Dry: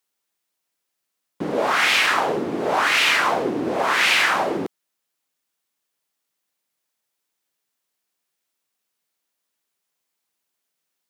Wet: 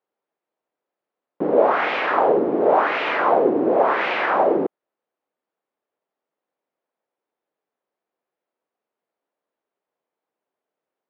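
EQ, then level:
resonant band-pass 520 Hz, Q 1.2
high-frequency loss of the air 200 metres
+8.5 dB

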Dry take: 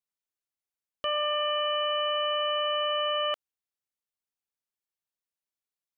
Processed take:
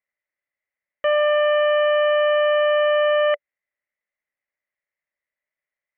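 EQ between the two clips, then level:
low-pass with resonance 2,000 Hz, resonance Q 12
parametric band 580 Hz +14 dB 0.3 octaves
0.0 dB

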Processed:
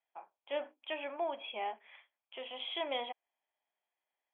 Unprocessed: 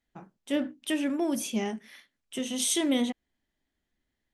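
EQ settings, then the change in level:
four-pole ladder high-pass 490 Hz, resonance 30%
Chebyshev low-pass with heavy ripple 3,400 Hz, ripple 9 dB
+7.0 dB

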